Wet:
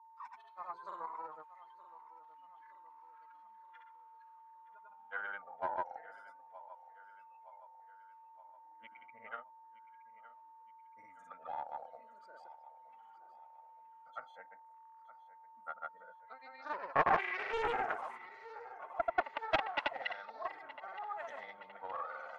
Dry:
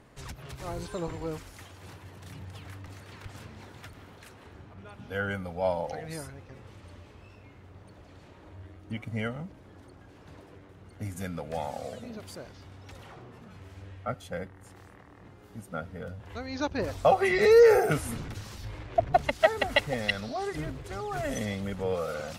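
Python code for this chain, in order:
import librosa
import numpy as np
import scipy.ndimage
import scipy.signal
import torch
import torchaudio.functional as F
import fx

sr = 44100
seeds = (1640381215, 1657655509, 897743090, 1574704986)

y = fx.noise_reduce_blind(x, sr, reduce_db=18)
y = fx.granulator(y, sr, seeds[0], grain_ms=100.0, per_s=20.0, spray_ms=100.0, spread_st=0)
y = y + 10.0 ** (-58.0 / 20.0) * np.sin(2.0 * np.pi * 900.0 * np.arange(len(y)) / sr)
y = fx.ladder_bandpass(y, sr, hz=1100.0, resonance_pct=70)
y = fx.echo_feedback(y, sr, ms=919, feedback_pct=52, wet_db=-16)
y = fx.doppler_dist(y, sr, depth_ms=0.33)
y = y * librosa.db_to_amplitude(5.5)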